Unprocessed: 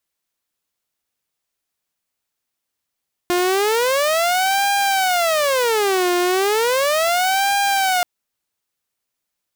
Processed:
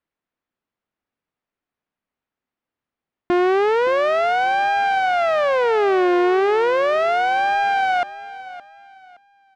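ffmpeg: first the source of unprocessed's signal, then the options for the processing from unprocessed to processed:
-f lavfi -i "aevalsrc='0.224*(2*mod((578*t-224/(2*PI*0.35)*sin(2*PI*0.35*t)),1)-1)':duration=4.73:sample_rate=44100"
-af "lowpass=2000,equalizer=frequency=240:width_type=o:width=1.2:gain=5,aecho=1:1:568|1136|1704:0.158|0.046|0.0133"

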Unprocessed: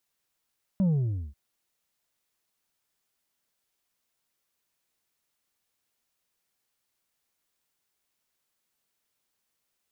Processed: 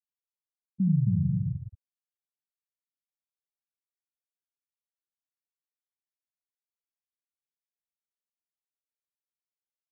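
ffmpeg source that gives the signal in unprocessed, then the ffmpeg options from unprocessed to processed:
-f lavfi -i "aevalsrc='0.0891*clip((0.54-t)/0.47,0,1)*tanh(1.58*sin(2*PI*200*0.54/log(65/200)*(exp(log(65/200)*t/0.54)-1)))/tanh(1.58)':duration=0.54:sample_rate=44100"
-filter_complex "[0:a]asplit=2[link_01][link_02];[link_02]aecho=0:1:270|432|529.2|587.5|622.5:0.631|0.398|0.251|0.158|0.1[link_03];[link_01][link_03]amix=inputs=2:normalize=0,afftfilt=real='re*gte(hypot(re,im),0.2)':imag='im*gte(hypot(re,im),0.2)':win_size=1024:overlap=0.75,asplit=2[link_04][link_05];[link_05]aecho=0:1:75:0.708[link_06];[link_04][link_06]amix=inputs=2:normalize=0"

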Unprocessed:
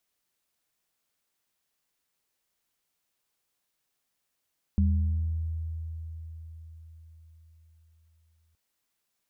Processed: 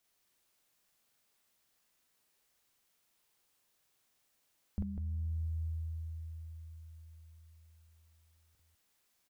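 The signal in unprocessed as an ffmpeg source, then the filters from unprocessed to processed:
-f lavfi -i "aevalsrc='0.1*pow(10,-3*t/4.9)*sin(2*PI*81*t)+0.0668*pow(10,-3*t/1.06)*sin(2*PI*198*t)':duration=3.77:sample_rate=44100"
-af "alimiter=level_in=3.5dB:limit=-24dB:level=0:latency=1:release=298,volume=-3.5dB,aecho=1:1:43.73|198.3:1|0.631"

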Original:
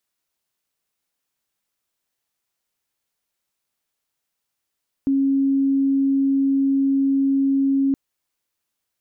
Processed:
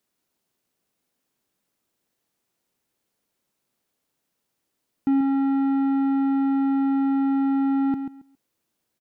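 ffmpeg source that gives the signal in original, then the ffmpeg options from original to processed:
-f lavfi -i "aevalsrc='0.168*sin(2*PI*273*t)':duration=2.87:sample_rate=44100"
-af "asoftclip=type=tanh:threshold=-29dB,equalizer=frequency=260:width=0.46:gain=11,aecho=1:1:137|274|411:0.355|0.0639|0.0115"

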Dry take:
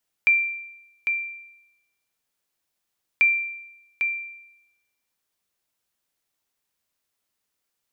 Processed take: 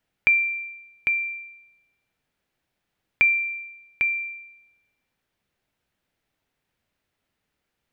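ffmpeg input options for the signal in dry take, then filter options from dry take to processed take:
-f lavfi -i "aevalsrc='0.266*(sin(2*PI*2360*mod(t,2.94))*exp(-6.91*mod(t,2.94)/0.89)+0.473*sin(2*PI*2360*max(mod(t,2.94)-0.8,0))*exp(-6.91*max(mod(t,2.94)-0.8,0)/0.89))':duration=5.88:sample_rate=44100"
-filter_complex "[0:a]equalizer=frequency=1100:width_type=o:width=0.47:gain=-5,asplit=2[link_01][link_02];[link_02]acompressor=threshold=-30dB:ratio=6,volume=3dB[link_03];[link_01][link_03]amix=inputs=2:normalize=0,bass=frequency=250:gain=6,treble=frequency=4000:gain=-15"

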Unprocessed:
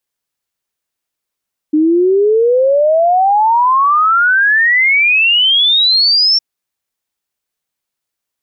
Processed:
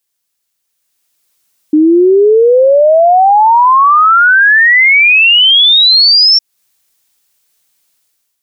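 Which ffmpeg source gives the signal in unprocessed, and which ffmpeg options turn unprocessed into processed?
-f lavfi -i "aevalsrc='0.422*clip(min(t,4.66-t)/0.01,0,1)*sin(2*PI*300*4.66/log(5500/300)*(exp(log(5500/300)*t/4.66)-1))':duration=4.66:sample_rate=44100"
-af "highshelf=frequency=2800:gain=10.5,alimiter=limit=-14dB:level=0:latency=1:release=249,dynaudnorm=framelen=660:gausssize=3:maxgain=12dB"

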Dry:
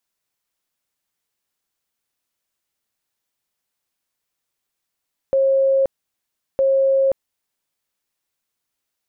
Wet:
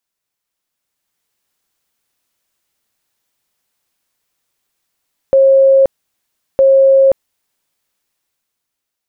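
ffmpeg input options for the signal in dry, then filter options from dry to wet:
-f lavfi -i "aevalsrc='0.224*sin(2*PI*540*mod(t,1.26))*lt(mod(t,1.26),285/540)':duration=2.52:sample_rate=44100"
-af "dynaudnorm=framelen=230:gausssize=9:maxgain=8.5dB"

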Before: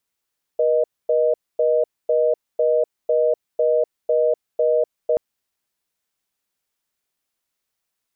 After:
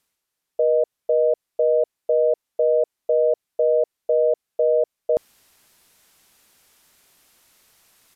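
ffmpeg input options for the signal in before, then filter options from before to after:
-f lavfi -i "aevalsrc='0.133*(sin(2*PI*480*t)+sin(2*PI*620*t))*clip(min(mod(t,0.5),0.25-mod(t,0.5))/0.005,0,1)':duration=4.58:sample_rate=44100"
-af "aresample=32000,aresample=44100,areverse,acompressor=mode=upward:threshold=-40dB:ratio=2.5,areverse"

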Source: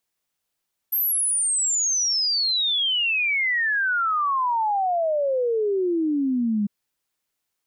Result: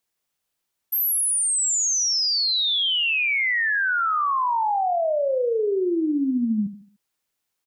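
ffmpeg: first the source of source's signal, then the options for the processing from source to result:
-f lavfi -i "aevalsrc='0.106*clip(min(t,5.75-t)/0.01,0,1)*sin(2*PI*13000*5.75/log(200/13000)*(exp(log(200/13000)*t/5.75)-1))':duration=5.75:sample_rate=44100"
-af "aecho=1:1:74|148|222|296:0.251|0.0955|0.0363|0.0138"

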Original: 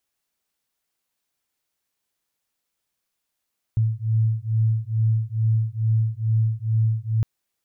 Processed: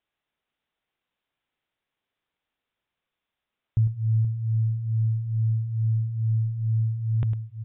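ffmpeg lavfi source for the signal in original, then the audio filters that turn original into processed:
-f lavfi -i "aevalsrc='0.0841*(sin(2*PI*110*t)+sin(2*PI*112.3*t))':duration=3.46:sample_rate=44100"
-filter_complex "[0:a]asplit=2[link_01][link_02];[link_02]aecho=0:1:104|478:0.316|0.316[link_03];[link_01][link_03]amix=inputs=2:normalize=0,aresample=8000,aresample=44100"

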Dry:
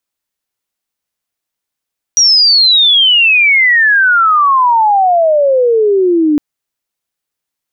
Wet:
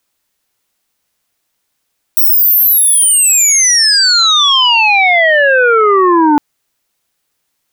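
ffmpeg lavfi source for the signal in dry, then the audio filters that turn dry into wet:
-f lavfi -i "aevalsrc='pow(10,(-4.5-2.5*t/4.21)/20)*sin(2*PI*5800*4.21/log(290/5800)*(exp(log(290/5800)*t/4.21)-1))':duration=4.21:sample_rate=44100"
-af "aeval=exprs='0.596*sin(PI/2*2.51*val(0)/0.596)':channel_layout=same"

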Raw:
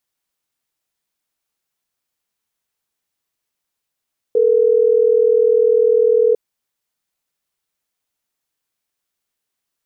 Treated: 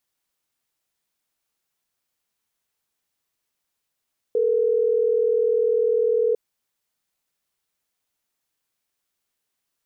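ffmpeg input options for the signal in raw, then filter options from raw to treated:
-f lavfi -i "aevalsrc='0.224*(sin(2*PI*440*t)+sin(2*PI*480*t))*clip(min(mod(t,6),2-mod(t,6))/0.005,0,1)':duration=3.12:sample_rate=44100"
-af "alimiter=limit=-15dB:level=0:latency=1:release=32"

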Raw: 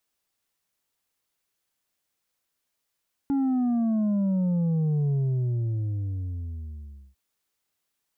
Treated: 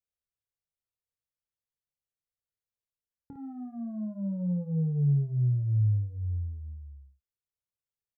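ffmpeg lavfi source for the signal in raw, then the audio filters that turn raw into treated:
-f lavfi -i "aevalsrc='0.0794*clip((3.85-t)/2.04,0,1)*tanh(1.68*sin(2*PI*280*3.85/log(65/280)*(exp(log(65/280)*t/3.85)-1)))/tanh(1.68)':duration=3.85:sample_rate=44100"
-af "agate=range=-8dB:threshold=-38dB:ratio=16:detection=peak,firequalizer=gain_entry='entry(120,0);entry(290,-22);entry(480,-6);entry(700,-16)':delay=0.05:min_phase=1,aecho=1:1:27|56:0.335|0.531"

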